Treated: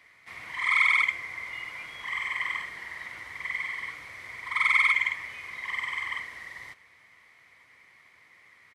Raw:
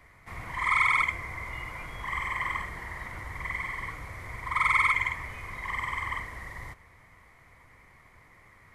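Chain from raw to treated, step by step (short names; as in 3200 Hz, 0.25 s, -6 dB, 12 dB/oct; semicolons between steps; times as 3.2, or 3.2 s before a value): weighting filter D; downsampling 32000 Hz; low shelf 150 Hz -5.5 dB; notch 6900 Hz, Q 26; gain -6 dB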